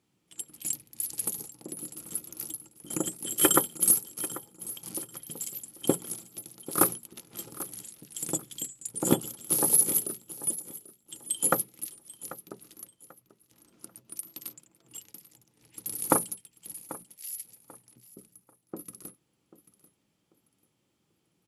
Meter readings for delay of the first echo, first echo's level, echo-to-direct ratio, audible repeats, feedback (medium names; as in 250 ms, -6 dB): 790 ms, -17.0 dB, -16.5 dB, 2, 27%